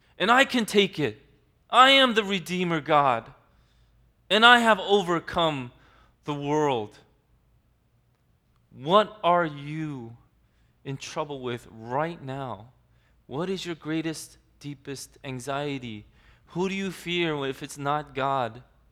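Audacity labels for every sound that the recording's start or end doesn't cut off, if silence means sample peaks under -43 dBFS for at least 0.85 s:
4.300000	6.970000	sound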